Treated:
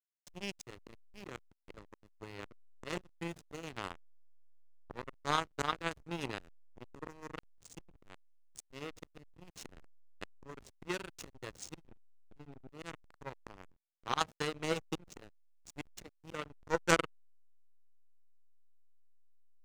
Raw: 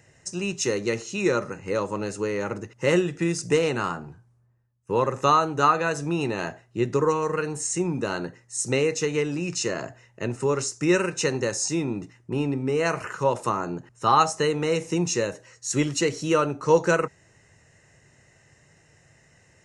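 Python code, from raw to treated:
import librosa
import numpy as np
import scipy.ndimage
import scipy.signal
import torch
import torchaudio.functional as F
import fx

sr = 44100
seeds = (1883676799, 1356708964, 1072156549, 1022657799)

y = fx.power_curve(x, sr, exponent=3.0)
y = fx.auto_swell(y, sr, attack_ms=728.0)
y = fx.backlash(y, sr, play_db=-59.0)
y = F.gain(torch.from_numpy(y), 14.5).numpy()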